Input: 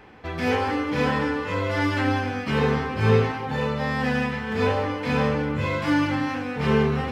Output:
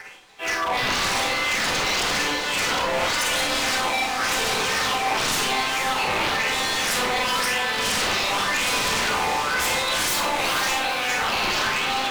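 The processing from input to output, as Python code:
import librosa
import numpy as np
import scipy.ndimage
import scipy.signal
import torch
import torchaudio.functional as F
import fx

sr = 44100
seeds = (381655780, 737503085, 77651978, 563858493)

y = fx.rattle_buzz(x, sr, strikes_db=-31.0, level_db=-29.0)
y = scipy.signal.sosfilt(scipy.signal.butter(2, 500.0, 'highpass', fs=sr, output='sos'), y)
y = fx.rider(y, sr, range_db=3, speed_s=2.0)
y = fx.filter_lfo_lowpass(y, sr, shape='sine', hz=1.6, low_hz=800.0, high_hz=4100.0, q=7.9)
y = np.sign(y) * np.maximum(np.abs(y) - 10.0 ** (-47.0 / 20.0), 0.0)
y = fx.stretch_vocoder_free(y, sr, factor=1.7)
y = 10.0 ** (-27.0 / 20.0) * (np.abs((y / 10.0 ** (-27.0 / 20.0) + 3.0) % 4.0 - 2.0) - 1.0)
y = fx.echo_diffused(y, sr, ms=470, feedback_pct=41, wet_db=-7)
y = fx.rev_schroeder(y, sr, rt60_s=0.38, comb_ms=31, drr_db=2.5)
y = y * 10.0 ** (6.0 / 20.0)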